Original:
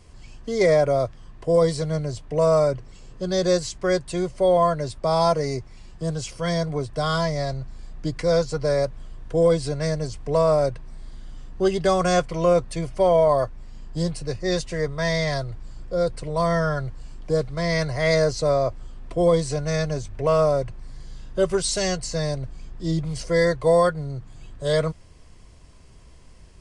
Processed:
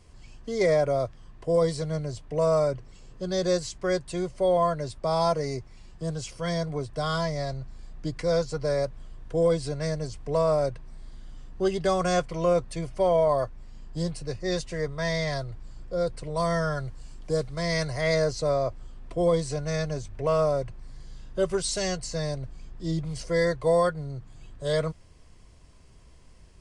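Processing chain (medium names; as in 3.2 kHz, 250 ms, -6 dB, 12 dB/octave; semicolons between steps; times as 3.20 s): 16.35–18.01 s: treble shelf 5.9 kHz +9 dB; trim -4.5 dB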